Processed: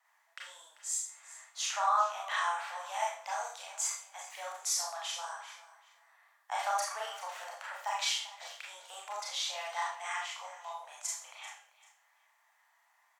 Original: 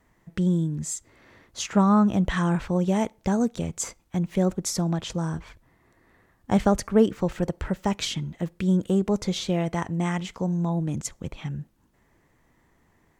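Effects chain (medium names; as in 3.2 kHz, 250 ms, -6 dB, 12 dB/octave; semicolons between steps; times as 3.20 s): steep high-pass 720 Hz 48 dB/octave; feedback delay 390 ms, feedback 24%, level -17 dB; Schroeder reverb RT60 0.45 s, combs from 27 ms, DRR -3.5 dB; trim -6.5 dB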